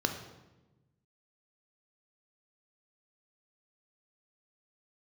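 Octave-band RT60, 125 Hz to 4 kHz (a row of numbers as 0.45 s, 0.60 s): 1.8 s, 1.5 s, 1.2 s, 0.95 s, 0.85 s, 0.80 s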